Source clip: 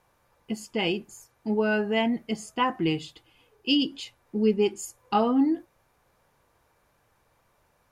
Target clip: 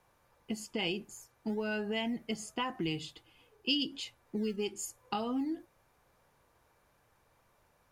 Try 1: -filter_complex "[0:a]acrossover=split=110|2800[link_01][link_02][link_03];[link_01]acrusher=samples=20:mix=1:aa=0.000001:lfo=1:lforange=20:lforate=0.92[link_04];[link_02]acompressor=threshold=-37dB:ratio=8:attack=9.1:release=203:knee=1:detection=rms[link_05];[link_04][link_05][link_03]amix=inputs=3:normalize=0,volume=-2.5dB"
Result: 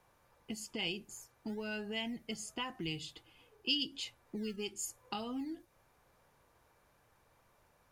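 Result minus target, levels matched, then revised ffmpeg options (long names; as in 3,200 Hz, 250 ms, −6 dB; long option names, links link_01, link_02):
downward compressor: peak gain reduction +7 dB
-filter_complex "[0:a]acrossover=split=110|2800[link_01][link_02][link_03];[link_01]acrusher=samples=20:mix=1:aa=0.000001:lfo=1:lforange=20:lforate=0.92[link_04];[link_02]acompressor=threshold=-29dB:ratio=8:attack=9.1:release=203:knee=1:detection=rms[link_05];[link_04][link_05][link_03]amix=inputs=3:normalize=0,volume=-2.5dB"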